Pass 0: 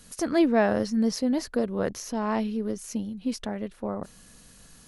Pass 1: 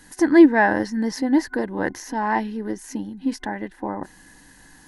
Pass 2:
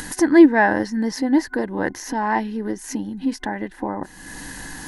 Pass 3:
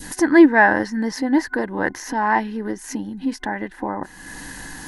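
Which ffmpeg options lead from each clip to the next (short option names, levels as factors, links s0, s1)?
-af "superequalizer=6b=3.55:9b=3.55:11b=3.98"
-af "acompressor=mode=upward:threshold=0.0794:ratio=2.5,volume=1.12"
-af "adynamicequalizer=threshold=0.0251:dfrequency=1400:dqfactor=0.77:tfrequency=1400:tqfactor=0.77:attack=5:release=100:ratio=0.375:range=3:mode=boostabove:tftype=bell,volume=0.891"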